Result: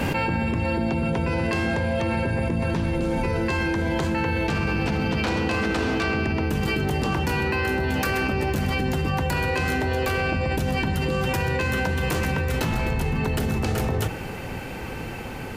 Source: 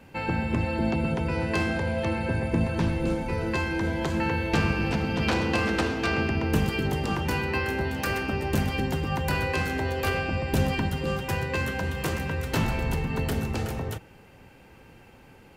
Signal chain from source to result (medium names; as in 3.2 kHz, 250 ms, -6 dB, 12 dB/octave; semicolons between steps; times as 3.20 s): Doppler pass-by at 4.10 s, 6 m/s, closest 7.3 m; level flattener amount 100%; trim -2.5 dB